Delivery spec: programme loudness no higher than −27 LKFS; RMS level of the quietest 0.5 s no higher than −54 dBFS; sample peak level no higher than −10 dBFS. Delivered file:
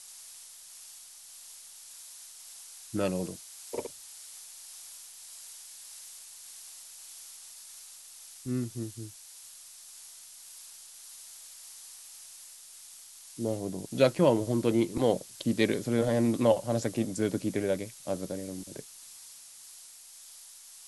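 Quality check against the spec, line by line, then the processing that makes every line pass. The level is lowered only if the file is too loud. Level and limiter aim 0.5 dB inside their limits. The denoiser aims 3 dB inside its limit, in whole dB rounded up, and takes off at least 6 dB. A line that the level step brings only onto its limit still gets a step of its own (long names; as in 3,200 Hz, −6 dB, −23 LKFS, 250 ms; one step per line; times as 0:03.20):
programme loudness −30.0 LKFS: in spec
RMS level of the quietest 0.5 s −51 dBFS: out of spec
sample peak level −8.0 dBFS: out of spec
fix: broadband denoise 6 dB, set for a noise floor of −51 dBFS
brickwall limiter −10.5 dBFS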